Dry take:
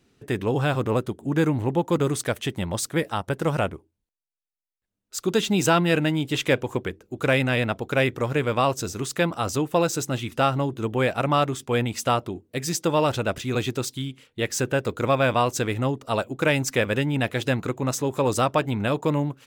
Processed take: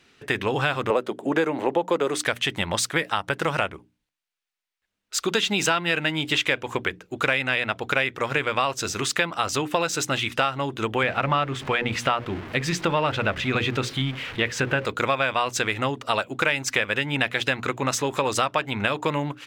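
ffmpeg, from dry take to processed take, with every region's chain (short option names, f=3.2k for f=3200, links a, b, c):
-filter_complex "[0:a]asettb=1/sr,asplit=3[a][b][c];[a]atrim=end=0.904[d];[b]atrim=start=0.9:end=2.17,asetpts=PTS-STARTPTS,afade=t=in:d=0.004:c=qsin,afade=t=out:st=1.266:d=0.004:c=qsin,highpass=f=170:w=0.5412,highpass=f=170:w=1.3066,equalizer=f=530:w=0.93:g=10[e];[c]atrim=start=2.166[f];[d][e]acrossfade=d=0.004:c1=hsin:c2=qsin[g];[g][f]acrossfade=d=0.004:c1=qsin:c2=hsin,asettb=1/sr,asplit=3[h][i][j];[h]atrim=end=11.034[k];[i]atrim=start=11.03:end=14.85,asetpts=PTS-STARTPTS,afade=t=in:d=0.004:c=qsin,afade=t=out:st=3.816:d=0.004:c=qsin,aeval=exprs='val(0)+0.5*0.0141*sgn(val(0))':c=same,bass=f=250:g=7,treble=f=4k:g=-12,bandreject=f=60:t=h:w=6,bandreject=f=120:t=h:w=6,bandreject=f=180:t=h:w=6,bandreject=f=240:t=h:w=6,bandreject=f=300:t=h:w=6,bandreject=f=360:t=h:w=6,bandreject=f=420:t=h:w=6,bandreject=f=480:t=h:w=6,bandreject=f=540:t=h:w=6[l];[j]atrim=start=14.846[m];[k][l]acrossfade=d=0.004:c1=hsin:c2=qsin[n];[n][m]acrossfade=d=0.004:c1=qsin:c2=hsin,equalizer=f=2.3k:w=0.34:g=14.5,bandreject=f=60:t=h:w=6,bandreject=f=120:t=h:w=6,bandreject=f=180:t=h:w=6,bandreject=f=240:t=h:w=6,bandreject=f=300:t=h:w=6,acompressor=threshold=-19dB:ratio=4,volume=-1.5dB"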